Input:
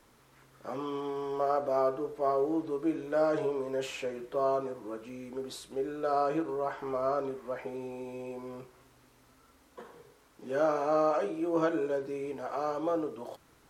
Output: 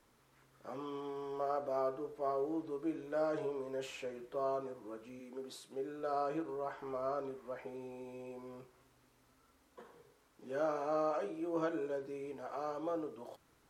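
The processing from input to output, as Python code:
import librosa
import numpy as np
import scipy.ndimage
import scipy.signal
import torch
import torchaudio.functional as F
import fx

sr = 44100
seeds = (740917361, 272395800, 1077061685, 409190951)

y = fx.highpass(x, sr, hz=fx.line((5.19, 200.0), (5.98, 75.0)), slope=24, at=(5.19, 5.98), fade=0.02)
y = y * 10.0 ** (-7.5 / 20.0)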